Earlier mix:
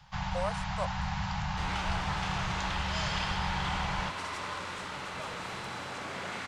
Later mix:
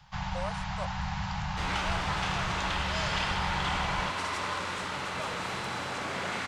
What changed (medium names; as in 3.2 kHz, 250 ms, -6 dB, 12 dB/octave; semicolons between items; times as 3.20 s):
speech -3.5 dB; second sound +4.5 dB